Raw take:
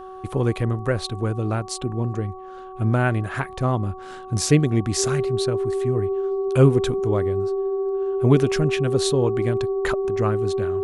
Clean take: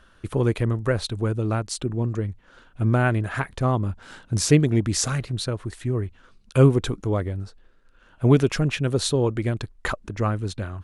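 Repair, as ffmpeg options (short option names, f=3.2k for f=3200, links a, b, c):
-af "bandreject=f=375.8:t=h:w=4,bandreject=f=751.6:t=h:w=4,bandreject=f=1.1274k:t=h:w=4,bandreject=f=390:w=30"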